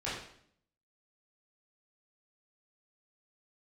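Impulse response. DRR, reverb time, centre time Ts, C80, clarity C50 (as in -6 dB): -10.0 dB, 0.65 s, 53 ms, 5.5 dB, 2.0 dB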